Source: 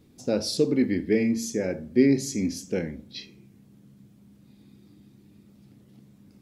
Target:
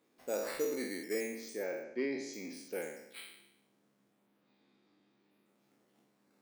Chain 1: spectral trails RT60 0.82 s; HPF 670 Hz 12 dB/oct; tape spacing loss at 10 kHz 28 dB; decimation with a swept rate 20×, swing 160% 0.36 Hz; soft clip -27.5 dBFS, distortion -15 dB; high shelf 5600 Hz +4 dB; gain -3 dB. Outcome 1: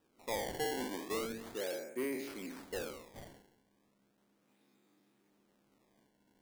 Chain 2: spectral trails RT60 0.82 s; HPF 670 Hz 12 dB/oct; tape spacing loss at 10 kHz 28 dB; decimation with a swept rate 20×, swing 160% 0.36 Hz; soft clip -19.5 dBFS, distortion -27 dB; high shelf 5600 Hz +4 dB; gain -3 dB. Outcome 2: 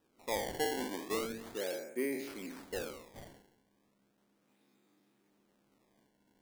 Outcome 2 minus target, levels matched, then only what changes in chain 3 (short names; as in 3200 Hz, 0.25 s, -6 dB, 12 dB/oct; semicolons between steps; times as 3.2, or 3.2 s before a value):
decimation with a swept rate: distortion +12 dB
change: decimation with a swept rate 4×, swing 160% 0.36 Hz